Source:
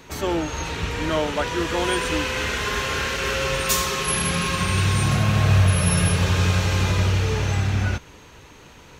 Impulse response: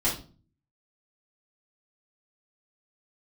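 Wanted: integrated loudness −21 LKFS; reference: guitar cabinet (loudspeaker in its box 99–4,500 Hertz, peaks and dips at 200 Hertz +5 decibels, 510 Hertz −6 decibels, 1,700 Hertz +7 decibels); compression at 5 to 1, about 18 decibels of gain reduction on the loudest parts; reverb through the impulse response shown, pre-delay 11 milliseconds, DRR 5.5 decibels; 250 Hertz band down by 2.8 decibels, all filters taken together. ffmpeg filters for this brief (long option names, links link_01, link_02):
-filter_complex "[0:a]equalizer=frequency=250:width_type=o:gain=-7.5,acompressor=threshold=-35dB:ratio=5,asplit=2[link_01][link_02];[1:a]atrim=start_sample=2205,adelay=11[link_03];[link_02][link_03]afir=irnorm=-1:irlink=0,volume=-15dB[link_04];[link_01][link_04]amix=inputs=2:normalize=0,highpass=99,equalizer=frequency=200:width_type=q:width=4:gain=5,equalizer=frequency=510:width_type=q:width=4:gain=-6,equalizer=frequency=1700:width_type=q:width=4:gain=7,lowpass=frequency=4500:width=0.5412,lowpass=frequency=4500:width=1.3066,volume=14dB"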